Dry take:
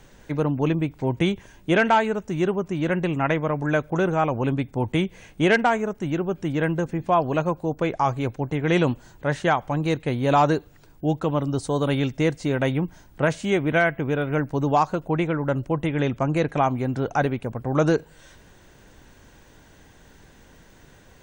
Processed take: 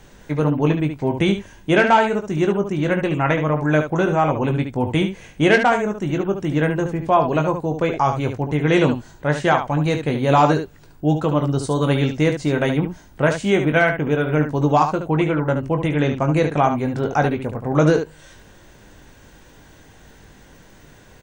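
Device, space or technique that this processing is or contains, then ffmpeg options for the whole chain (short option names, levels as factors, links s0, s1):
slapback doubling: -filter_complex "[0:a]asplit=3[s0][s1][s2];[s1]adelay=20,volume=0.422[s3];[s2]adelay=72,volume=0.398[s4];[s0][s3][s4]amix=inputs=3:normalize=0,volume=1.41"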